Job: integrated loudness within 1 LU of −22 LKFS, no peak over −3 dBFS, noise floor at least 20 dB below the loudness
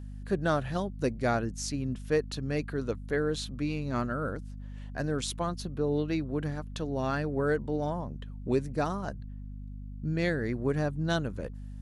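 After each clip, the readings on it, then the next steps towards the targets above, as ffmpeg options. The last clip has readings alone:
mains hum 50 Hz; hum harmonics up to 250 Hz; level of the hum −38 dBFS; integrated loudness −32.0 LKFS; sample peak −14.0 dBFS; target loudness −22.0 LKFS
→ -af "bandreject=frequency=50:width_type=h:width=6,bandreject=frequency=100:width_type=h:width=6,bandreject=frequency=150:width_type=h:width=6,bandreject=frequency=200:width_type=h:width=6,bandreject=frequency=250:width_type=h:width=6"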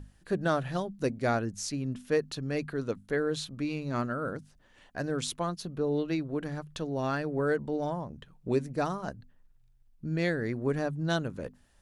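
mains hum none found; integrated loudness −32.0 LKFS; sample peak −14.5 dBFS; target loudness −22.0 LKFS
→ -af "volume=10dB"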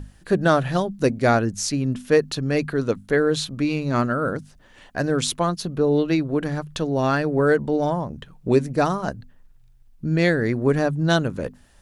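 integrated loudness −22.0 LKFS; sample peak −4.5 dBFS; background noise floor −52 dBFS

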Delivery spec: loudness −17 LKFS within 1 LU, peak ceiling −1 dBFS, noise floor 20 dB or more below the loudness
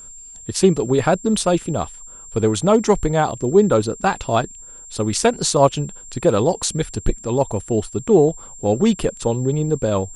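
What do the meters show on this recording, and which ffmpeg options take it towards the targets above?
interfering tone 7,400 Hz; level of the tone −37 dBFS; integrated loudness −19.0 LKFS; sample peak −2.0 dBFS; target loudness −17.0 LKFS
→ -af "bandreject=frequency=7400:width=30"
-af "volume=2dB,alimiter=limit=-1dB:level=0:latency=1"

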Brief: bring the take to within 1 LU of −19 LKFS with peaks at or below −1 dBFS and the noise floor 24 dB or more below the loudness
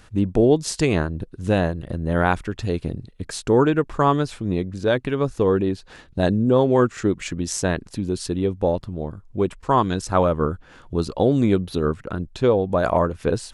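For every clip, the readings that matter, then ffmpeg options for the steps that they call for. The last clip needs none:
integrated loudness −22.0 LKFS; sample peak −5.5 dBFS; target loudness −19.0 LKFS
→ -af "volume=3dB"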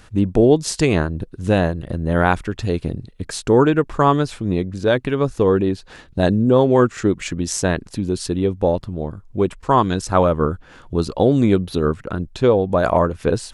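integrated loudness −19.0 LKFS; sample peak −2.5 dBFS; background noise floor −46 dBFS

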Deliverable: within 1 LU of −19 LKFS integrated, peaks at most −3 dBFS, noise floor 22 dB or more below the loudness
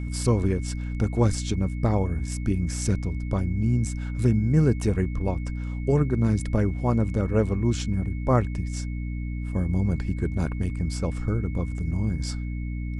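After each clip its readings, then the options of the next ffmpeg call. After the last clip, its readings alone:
mains hum 60 Hz; hum harmonics up to 300 Hz; level of the hum −27 dBFS; interfering tone 2,200 Hz; level of the tone −47 dBFS; integrated loudness −26.0 LKFS; sample peak −7.5 dBFS; target loudness −19.0 LKFS
→ -af "bandreject=frequency=60:width_type=h:width=4,bandreject=frequency=120:width_type=h:width=4,bandreject=frequency=180:width_type=h:width=4,bandreject=frequency=240:width_type=h:width=4,bandreject=frequency=300:width_type=h:width=4"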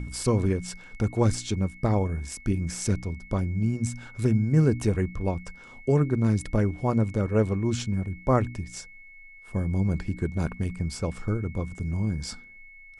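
mains hum none found; interfering tone 2,200 Hz; level of the tone −47 dBFS
→ -af "bandreject=frequency=2200:width=30"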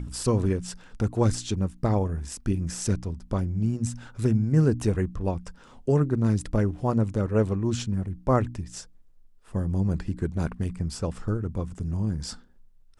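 interfering tone none found; integrated loudness −27.0 LKFS; sample peak −9.5 dBFS; target loudness −19.0 LKFS
→ -af "volume=8dB,alimiter=limit=-3dB:level=0:latency=1"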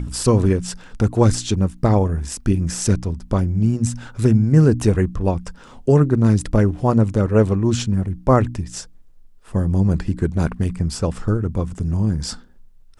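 integrated loudness −19.0 LKFS; sample peak −3.0 dBFS; background noise floor −45 dBFS

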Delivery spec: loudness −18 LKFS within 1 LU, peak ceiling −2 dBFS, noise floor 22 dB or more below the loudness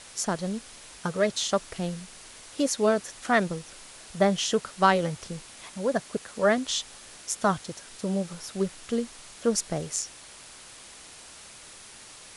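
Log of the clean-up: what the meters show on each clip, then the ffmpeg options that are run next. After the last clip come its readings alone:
background noise floor −48 dBFS; target noise floor −50 dBFS; integrated loudness −28.0 LKFS; sample peak −7.0 dBFS; target loudness −18.0 LKFS
→ -af "afftdn=noise_reduction=6:noise_floor=-48"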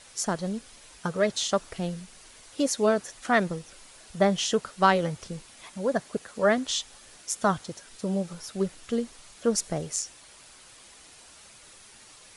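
background noise floor −52 dBFS; integrated loudness −28.0 LKFS; sample peak −7.0 dBFS; target loudness −18.0 LKFS
→ -af "volume=10dB,alimiter=limit=-2dB:level=0:latency=1"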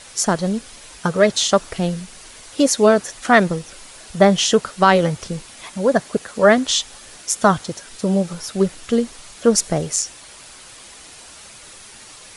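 integrated loudness −18.5 LKFS; sample peak −2.0 dBFS; background noise floor −42 dBFS

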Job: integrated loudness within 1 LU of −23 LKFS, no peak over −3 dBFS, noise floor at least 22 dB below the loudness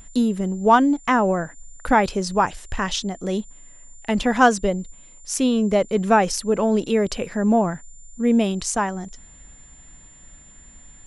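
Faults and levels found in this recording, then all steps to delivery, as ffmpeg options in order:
interfering tone 7,200 Hz; level of the tone −47 dBFS; integrated loudness −21.0 LKFS; sample peak −2.5 dBFS; target loudness −23.0 LKFS
→ -af "bandreject=frequency=7200:width=30"
-af "volume=-2dB"

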